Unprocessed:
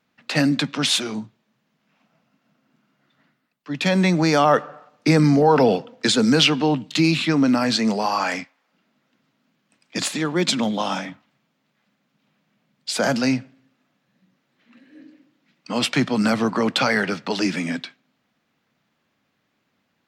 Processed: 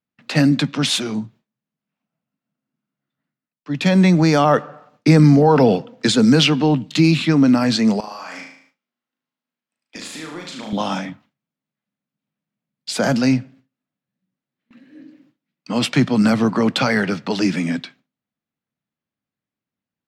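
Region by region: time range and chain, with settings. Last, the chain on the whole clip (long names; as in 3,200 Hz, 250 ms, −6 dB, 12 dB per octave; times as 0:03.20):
0:08.00–0:10.73: high-pass filter 610 Hz 6 dB per octave + downward compressor 16 to 1, threshold −31 dBFS + flutter between parallel walls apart 6.4 metres, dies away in 0.63 s
whole clip: low-shelf EQ 240 Hz +9.5 dB; noise gate with hold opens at −42 dBFS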